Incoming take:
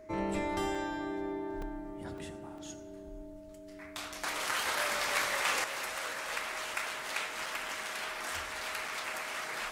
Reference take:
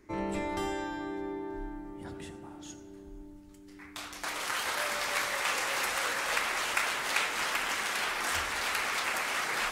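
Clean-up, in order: notch 630 Hz, Q 30; interpolate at 0.75/1.62/2.18/2.58/7.46/8.88, 3.1 ms; gain 0 dB, from 5.64 s +6.5 dB

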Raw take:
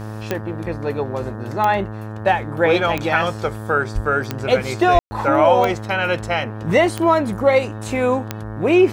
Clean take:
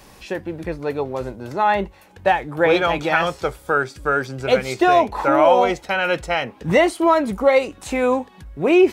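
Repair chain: de-click; de-hum 108 Hz, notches 17; de-plosive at 3.94/4.93; room tone fill 4.99–5.11

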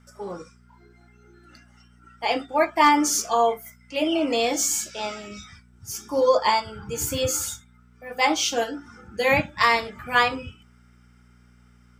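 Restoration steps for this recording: clip repair -6 dBFS; de-hum 60.3 Hz, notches 4

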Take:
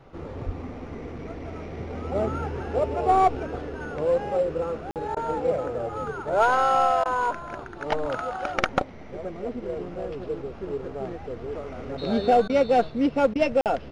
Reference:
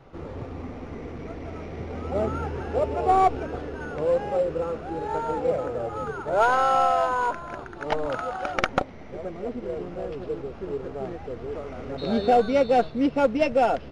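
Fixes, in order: 0.45–0.57 HPF 140 Hz 24 dB/oct; interpolate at 4.91/13.61, 48 ms; interpolate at 5.15/7.04/12.48/13.34, 14 ms

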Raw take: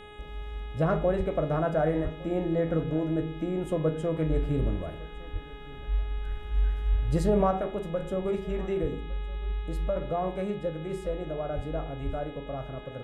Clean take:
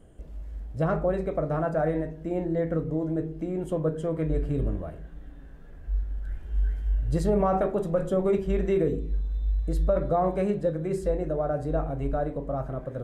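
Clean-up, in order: de-hum 418.1 Hz, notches 9; de-plosive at 1.17/2.03/5.32/6.91/8.81/11.55/12.05; inverse comb 1.159 s -22 dB; gain correction +5.5 dB, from 7.51

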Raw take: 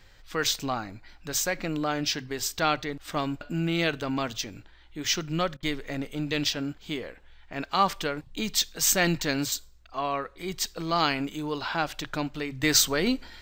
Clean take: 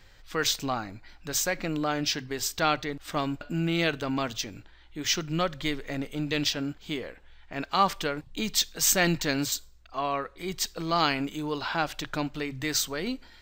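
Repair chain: interpolate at 5.57, 56 ms; gain 0 dB, from 12.63 s -6.5 dB

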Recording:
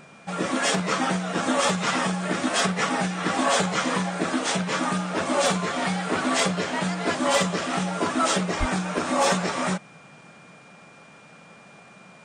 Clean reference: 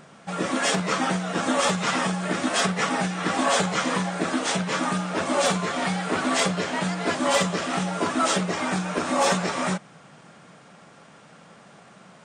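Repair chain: notch 2400 Hz, Q 30; 8.59–8.71 HPF 140 Hz 24 dB/oct

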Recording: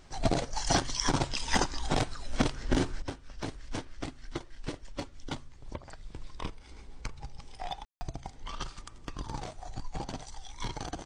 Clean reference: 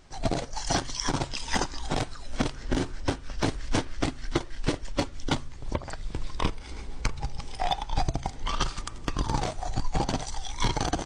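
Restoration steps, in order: room tone fill 7.85–8.01; gain 0 dB, from 3.02 s +10.5 dB

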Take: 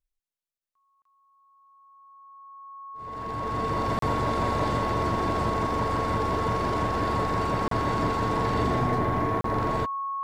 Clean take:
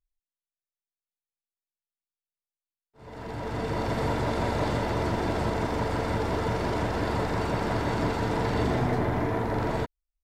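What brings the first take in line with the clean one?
notch 1100 Hz, Q 30; interpolate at 0.58/1.02/3.99/7.68/9.41, 33 ms

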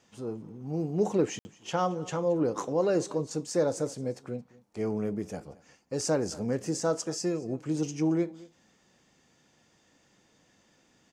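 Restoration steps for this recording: room tone fill 1.39–1.45; inverse comb 0.223 s -21.5 dB

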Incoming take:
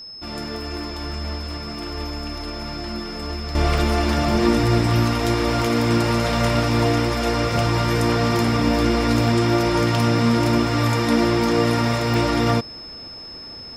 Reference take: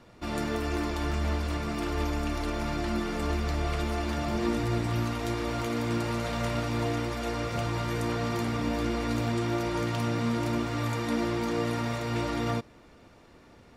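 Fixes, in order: notch 5200 Hz, Q 30; interpolate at 3.78/12.14, 1.1 ms; gain correction -10.5 dB, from 3.55

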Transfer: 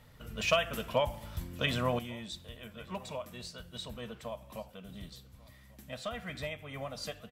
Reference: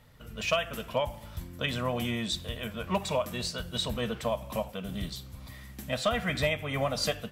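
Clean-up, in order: inverse comb 1.142 s -23.5 dB; gain 0 dB, from 1.99 s +11 dB

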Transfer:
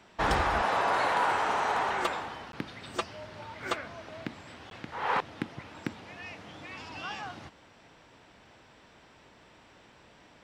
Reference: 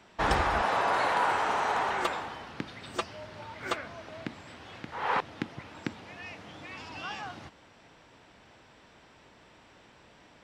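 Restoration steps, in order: clip repair -19 dBFS; interpolate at 2.52/4.7, 12 ms

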